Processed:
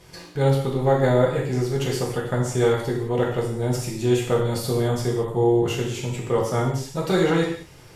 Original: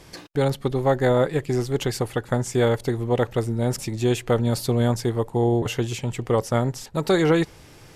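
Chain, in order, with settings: non-linear reverb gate 0.24 s falling, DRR -3.5 dB; gain -5 dB

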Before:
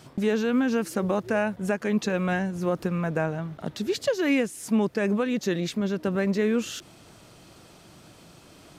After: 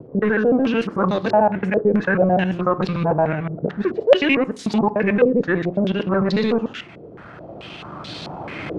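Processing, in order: local time reversal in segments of 74 ms; recorder AGC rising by 6.5 dB/s; HPF 61 Hz; in parallel at -0.5 dB: overloaded stage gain 24 dB; on the sum: wow and flutter 26 cents; on a send at -13 dB: reverb RT60 0.40 s, pre-delay 6 ms; on the sum: stepped low-pass 4.6 Hz 470–4000 Hz

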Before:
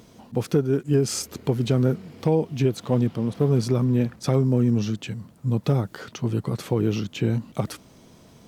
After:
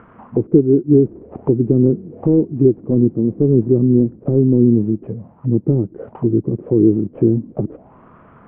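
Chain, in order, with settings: CVSD 16 kbps; envelope low-pass 340–1400 Hz down, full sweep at -25 dBFS; gain +4 dB

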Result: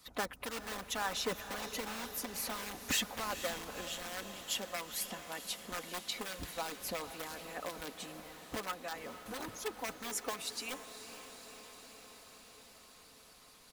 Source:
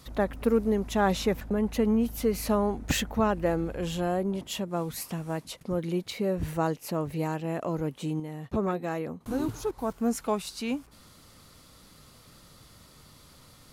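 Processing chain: spectral delete 2.07–2.35, 420–4500 Hz; in parallel at -6.5 dB: wrapped overs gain 22 dB; on the sum: low shelf 440 Hz -12 dB; comb 4 ms, depth 56%; harmonic-percussive split harmonic -16 dB; on a send: diffused feedback echo 0.489 s, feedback 71%, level -11 dB; on the sum: gain -3.5 dB

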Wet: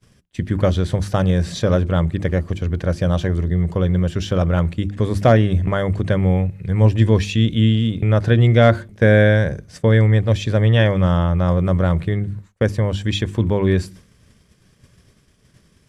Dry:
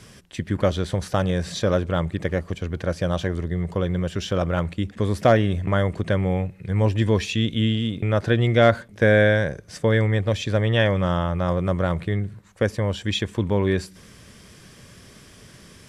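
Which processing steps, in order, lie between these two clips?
low shelf 220 Hz +9 dB; notches 50/100/150/200/250/300/350 Hz; expander -33 dBFS; gain +1 dB

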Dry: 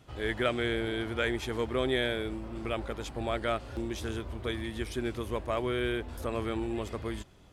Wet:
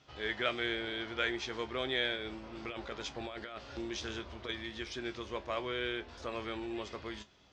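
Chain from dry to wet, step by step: steep low-pass 6000 Hz 36 dB/oct; tilt +2.5 dB/oct; 2.16–4.49 negative-ratio compressor -37 dBFS, ratio -1; resonator 70 Hz, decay 0.16 s, harmonics all, mix 70%

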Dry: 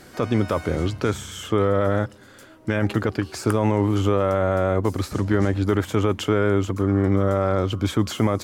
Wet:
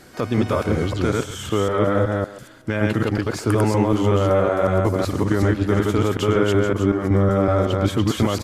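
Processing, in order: reverse delay 0.187 s, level -0.5 dB; speakerphone echo 0.14 s, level -14 dB; MP3 80 kbps 32000 Hz

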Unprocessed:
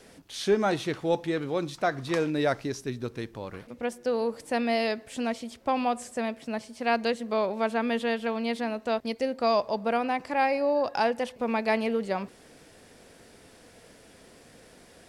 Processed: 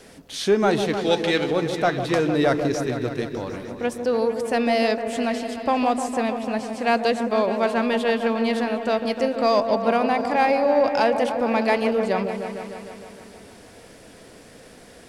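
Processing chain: 0.97–1.51 weighting filter D; in parallel at -9 dB: overloaded stage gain 24 dB; on the sum: repeats that get brighter 0.152 s, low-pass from 750 Hz, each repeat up 1 oct, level -6 dB; gain +3 dB

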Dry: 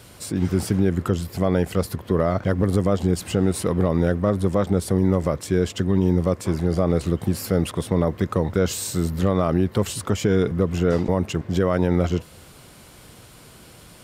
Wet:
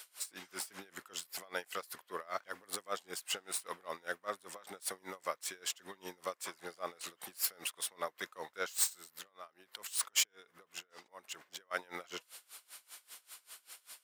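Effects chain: tracing distortion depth 0.026 ms; high shelf 7900 Hz +7.5 dB; 8.88–11.71 negative-ratio compressor -31 dBFS, ratio -1; HPF 1200 Hz 12 dB/oct; dB-linear tremolo 5.1 Hz, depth 25 dB; gain -1.5 dB

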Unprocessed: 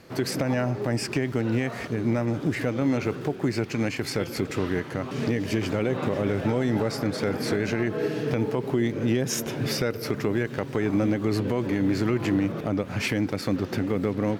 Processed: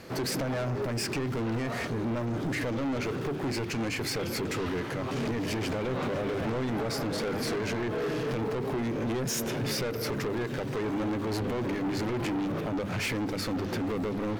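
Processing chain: notches 50/100/150/200/250/300/350 Hz; in parallel at -3 dB: limiter -24 dBFS, peak gain reduction 10.5 dB; on the sum: soft clip -27.5 dBFS, distortion -7 dB

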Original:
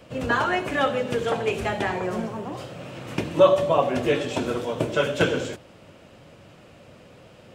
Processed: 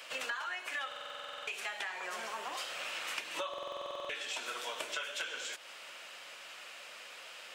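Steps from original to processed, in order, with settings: HPF 1500 Hz 12 dB/oct; in parallel at -2.5 dB: limiter -23 dBFS, peak gain reduction 8.5 dB; on the sum: compressor 12:1, threshold -40 dBFS, peak gain reduction 20.5 dB; stuck buffer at 0.87/3.49, samples 2048, times 12; gain +4 dB

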